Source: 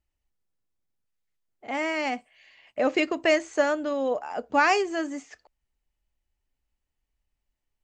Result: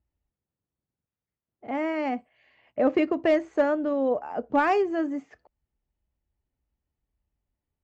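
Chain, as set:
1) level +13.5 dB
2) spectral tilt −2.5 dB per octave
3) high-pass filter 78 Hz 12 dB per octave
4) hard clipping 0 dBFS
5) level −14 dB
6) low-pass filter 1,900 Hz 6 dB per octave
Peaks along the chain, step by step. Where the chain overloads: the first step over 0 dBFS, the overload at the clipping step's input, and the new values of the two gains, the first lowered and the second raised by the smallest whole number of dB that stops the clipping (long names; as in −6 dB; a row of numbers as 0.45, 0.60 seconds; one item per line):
+4.5, +4.0, +4.0, 0.0, −14.0, −14.0 dBFS
step 1, 4.0 dB
step 1 +9.5 dB, step 5 −10 dB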